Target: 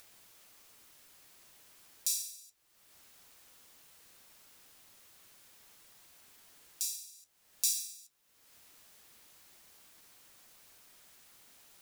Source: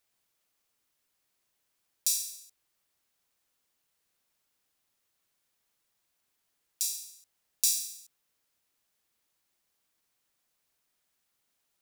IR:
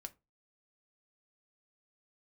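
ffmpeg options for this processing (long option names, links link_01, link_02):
-af "flanger=delay=9.2:depth=4.6:regen=-57:speed=0.38:shape=sinusoidal,acompressor=mode=upward:threshold=-41dB:ratio=2.5"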